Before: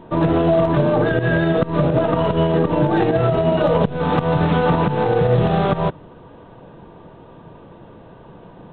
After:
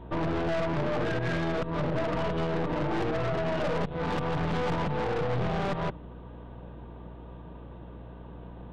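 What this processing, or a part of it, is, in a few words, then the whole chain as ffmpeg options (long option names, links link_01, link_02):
valve amplifier with mains hum: -af "aeval=exprs='(tanh(14.1*val(0)+0.55)-tanh(0.55))/14.1':channel_layout=same,aeval=exprs='val(0)+0.01*(sin(2*PI*60*n/s)+sin(2*PI*2*60*n/s)/2+sin(2*PI*3*60*n/s)/3+sin(2*PI*4*60*n/s)/4+sin(2*PI*5*60*n/s)/5)':channel_layout=same,volume=-4dB"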